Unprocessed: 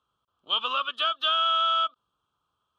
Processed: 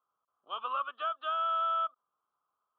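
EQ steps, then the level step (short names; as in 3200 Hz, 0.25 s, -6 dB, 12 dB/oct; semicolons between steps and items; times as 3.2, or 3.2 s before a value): band-pass 920 Hz, Q 1.4; air absorption 360 m; notch 910 Hz, Q 9.9; 0.0 dB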